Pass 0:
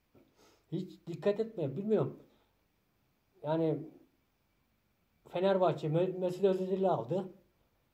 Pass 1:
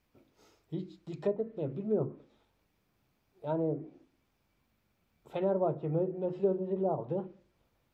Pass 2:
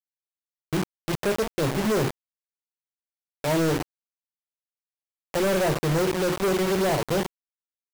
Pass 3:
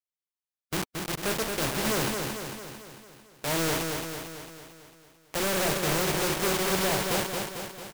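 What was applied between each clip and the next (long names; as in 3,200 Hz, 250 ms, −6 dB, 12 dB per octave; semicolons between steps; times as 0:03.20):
treble cut that deepens with the level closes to 790 Hz, closed at −27 dBFS
log-companded quantiser 2 bits; level +4 dB
compressing power law on the bin magnitudes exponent 0.65; repeating echo 224 ms, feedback 57%, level −4.5 dB; level −5 dB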